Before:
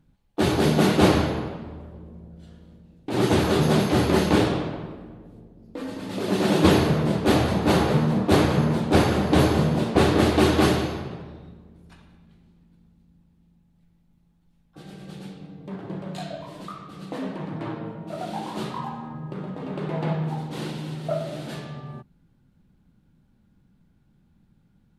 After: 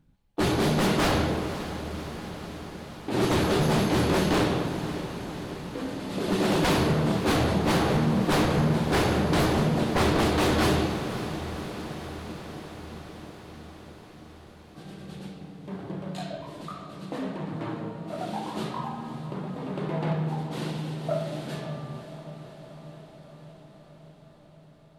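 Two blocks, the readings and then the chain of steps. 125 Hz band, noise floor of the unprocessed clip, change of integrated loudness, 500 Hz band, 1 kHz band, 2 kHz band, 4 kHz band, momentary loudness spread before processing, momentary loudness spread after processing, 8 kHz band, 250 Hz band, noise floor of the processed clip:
−3.0 dB, −63 dBFS, −4.0 dB, −3.5 dB, −1.5 dB, −1.0 dB, −1.5 dB, 20 LU, 19 LU, −0.5 dB, −3.5 dB, −52 dBFS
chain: wave folding −16 dBFS
feedback delay with all-pass diffusion 552 ms, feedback 71%, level −12 dB
level −1.5 dB

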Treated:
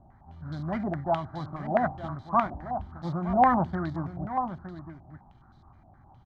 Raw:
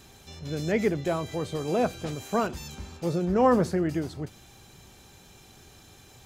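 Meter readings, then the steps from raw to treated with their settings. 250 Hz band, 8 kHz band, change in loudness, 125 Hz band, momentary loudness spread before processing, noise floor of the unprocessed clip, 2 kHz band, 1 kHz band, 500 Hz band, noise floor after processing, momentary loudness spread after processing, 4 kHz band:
−3.0 dB, below −25 dB, −1.5 dB, −1.0 dB, 17 LU, −53 dBFS, −1.0 dB, +5.5 dB, −5.0 dB, −57 dBFS, 19 LU, below −10 dB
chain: running median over 25 samples
dynamic equaliser 750 Hz, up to +5 dB, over −41 dBFS, Q 2.4
phaser with its sweep stopped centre 1,100 Hz, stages 4
single-tap delay 914 ms −10 dB
low-pass on a step sequencer 9.6 Hz 680–3,900 Hz

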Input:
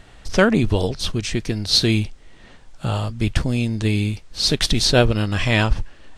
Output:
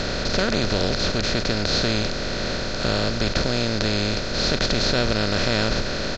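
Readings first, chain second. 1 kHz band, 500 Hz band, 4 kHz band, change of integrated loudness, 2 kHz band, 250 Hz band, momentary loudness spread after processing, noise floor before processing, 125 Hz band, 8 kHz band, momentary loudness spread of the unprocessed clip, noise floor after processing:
0.0 dB, −1.0 dB, −0.5 dB, −2.5 dB, 0.0 dB, −3.5 dB, 4 LU, −45 dBFS, −5.5 dB, −2.5 dB, 9 LU, −27 dBFS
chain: compressor on every frequency bin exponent 0.2
downsampling to 16,000 Hz
level −12 dB

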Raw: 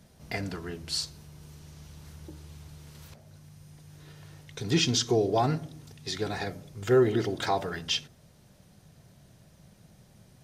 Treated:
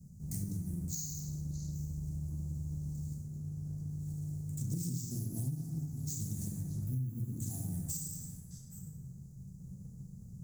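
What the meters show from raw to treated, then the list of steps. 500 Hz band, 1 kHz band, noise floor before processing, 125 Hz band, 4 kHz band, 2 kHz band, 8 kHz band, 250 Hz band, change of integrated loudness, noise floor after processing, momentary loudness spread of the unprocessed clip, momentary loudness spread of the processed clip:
−30.5 dB, below −30 dB, −59 dBFS, 0.0 dB, −24.0 dB, below −35 dB, −3.5 dB, −7.5 dB, −11.0 dB, −51 dBFS, 23 LU, 12 LU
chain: bad sample-rate conversion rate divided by 4×, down filtered, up hold
parametric band 470 Hz +7.5 dB 1.2 octaves
healed spectral selection 0:06.58–0:07.31, 340–12,000 Hz both
dynamic equaliser 190 Hz, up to −5 dB, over −50 dBFS, Q 5.2
elliptic band-stop filter 190–6,900 Hz, stop band 40 dB
echo through a band-pass that steps 204 ms, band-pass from 630 Hz, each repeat 1.4 octaves, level −10 dB
in parallel at −7 dB: dead-zone distortion −53.5 dBFS
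on the sum: dense smooth reverb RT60 1.5 s, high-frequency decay 0.55×, DRR −3.5 dB
downward compressor 8 to 1, threshold −36 dBFS, peak gain reduction 19.5 dB
highs frequency-modulated by the lows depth 0.33 ms
level +2 dB

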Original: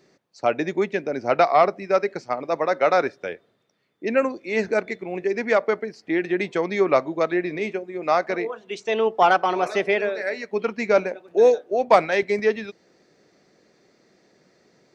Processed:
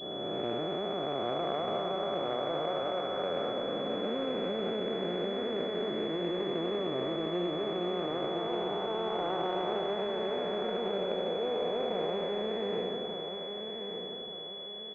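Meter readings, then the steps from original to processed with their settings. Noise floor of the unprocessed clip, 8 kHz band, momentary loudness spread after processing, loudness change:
−64 dBFS, can't be measured, 5 LU, −11.0 dB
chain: spectrum smeared in time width 1,040 ms
low-pass that shuts in the quiet parts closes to 570 Hz, open at −25.5 dBFS
in parallel at −2.5 dB: compressor whose output falls as the input rises −34 dBFS, ratio −0.5
on the sum: bit-depth reduction 8 bits, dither triangular
noise gate −38 dBFS, range −9 dB
on a send: repeating echo 1,186 ms, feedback 42%, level −7 dB
on the sum: switching amplifier with a slow clock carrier 3,400 Hz
level −6.5 dB

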